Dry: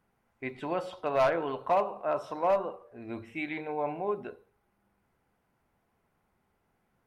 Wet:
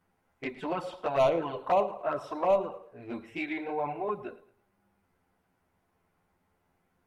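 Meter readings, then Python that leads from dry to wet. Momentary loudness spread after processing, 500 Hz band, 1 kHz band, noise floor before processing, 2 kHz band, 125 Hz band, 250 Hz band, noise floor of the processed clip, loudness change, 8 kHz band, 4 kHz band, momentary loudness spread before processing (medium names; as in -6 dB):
14 LU, +1.0 dB, 0.0 dB, -75 dBFS, -1.0 dB, +1.0 dB, +1.0 dB, -75 dBFS, +0.5 dB, no reading, +2.0 dB, 14 LU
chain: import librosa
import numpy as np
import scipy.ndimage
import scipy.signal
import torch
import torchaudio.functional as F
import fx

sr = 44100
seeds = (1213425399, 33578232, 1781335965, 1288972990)

p1 = fx.env_flanger(x, sr, rest_ms=11.5, full_db=-23.0)
p2 = p1 + fx.echo_feedback(p1, sr, ms=110, feedback_pct=36, wet_db=-19, dry=0)
y = p2 * librosa.db_to_amplitude(3.5)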